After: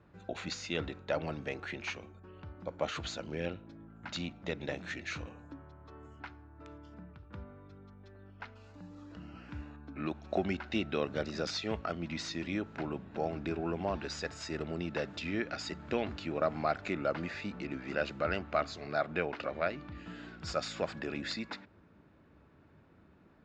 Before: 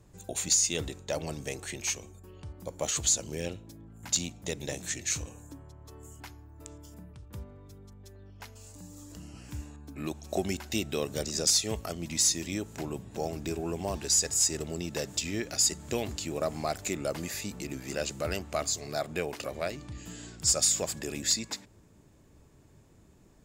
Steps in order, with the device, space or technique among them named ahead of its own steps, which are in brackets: guitar cabinet (cabinet simulation 80–3500 Hz, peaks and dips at 120 Hz -9 dB, 410 Hz -3 dB, 1.4 kHz +8 dB, 3.2 kHz -4 dB)

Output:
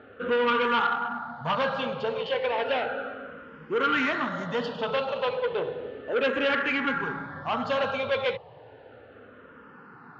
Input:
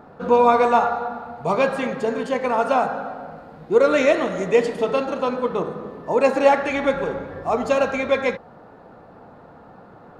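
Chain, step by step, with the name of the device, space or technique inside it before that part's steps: barber-pole phaser into a guitar amplifier (barber-pole phaser -0.33 Hz; saturation -21 dBFS, distortion -10 dB; cabinet simulation 100–4400 Hz, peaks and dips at 110 Hz +5 dB, 190 Hz -7 dB, 330 Hz -8 dB, 700 Hz -7 dB, 1.5 kHz +5 dB, 3 kHz +9 dB); trim +1.5 dB

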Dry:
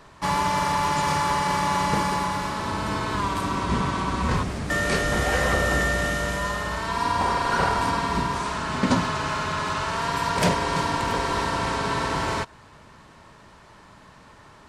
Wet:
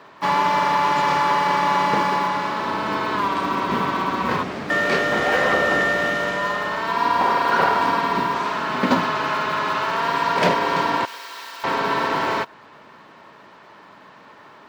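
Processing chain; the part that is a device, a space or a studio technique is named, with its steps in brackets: early digital voice recorder (band-pass 250–3700 Hz; block-companded coder 7-bit); 11.05–11.64 s: differentiator; trim +5 dB

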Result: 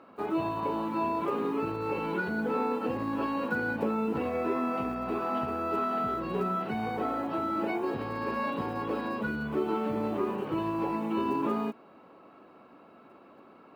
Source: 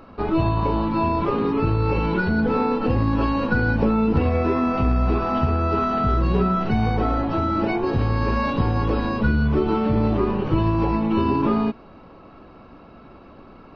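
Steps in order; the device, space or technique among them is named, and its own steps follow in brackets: early digital voice recorder (band-pass 250–3700 Hz; block-companded coder 7-bit); trim -7 dB

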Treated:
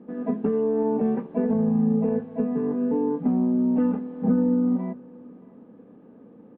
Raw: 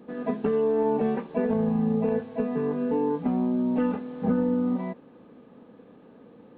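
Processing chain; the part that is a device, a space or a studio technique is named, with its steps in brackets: phone in a pocket (low-pass 3 kHz 12 dB/octave; peaking EQ 230 Hz +6 dB 1.4 oct; treble shelf 2.2 kHz -10.5 dB); hum notches 50/100/150 Hz; delay 619 ms -23.5 dB; trim -2 dB

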